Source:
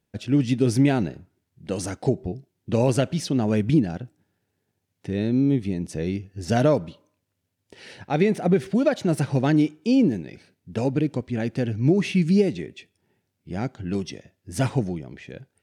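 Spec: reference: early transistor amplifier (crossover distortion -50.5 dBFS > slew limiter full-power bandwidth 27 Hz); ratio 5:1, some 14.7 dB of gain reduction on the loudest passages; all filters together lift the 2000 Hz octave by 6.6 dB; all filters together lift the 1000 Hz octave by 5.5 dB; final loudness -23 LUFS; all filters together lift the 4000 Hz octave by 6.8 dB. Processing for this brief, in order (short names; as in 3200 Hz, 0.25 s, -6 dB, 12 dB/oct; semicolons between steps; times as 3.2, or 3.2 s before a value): bell 1000 Hz +7 dB; bell 2000 Hz +4.5 dB; bell 4000 Hz +7 dB; compressor 5:1, threshold -30 dBFS; crossover distortion -50.5 dBFS; slew limiter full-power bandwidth 27 Hz; gain +13 dB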